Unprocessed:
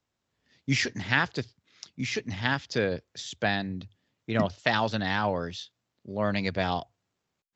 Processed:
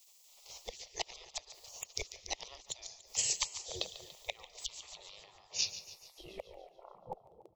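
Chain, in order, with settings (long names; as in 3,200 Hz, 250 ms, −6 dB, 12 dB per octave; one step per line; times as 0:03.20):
turntable brake at the end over 2.15 s
gate with flip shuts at −24 dBFS, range −36 dB
in parallel at +1.5 dB: downward compressor, threshold −53 dBFS, peak gain reduction 21 dB
on the sum: echo with a time of its own for lows and highs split 360 Hz, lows 264 ms, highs 144 ms, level −13.5 dB
on a send at −20.5 dB: convolution reverb RT60 0.70 s, pre-delay 112 ms
on the sum: gate on every frequency bin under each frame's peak −15 dB weak
high-shelf EQ 6,200 Hz +11.5 dB
phaser with its sweep stopped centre 640 Hz, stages 4
level +14.5 dB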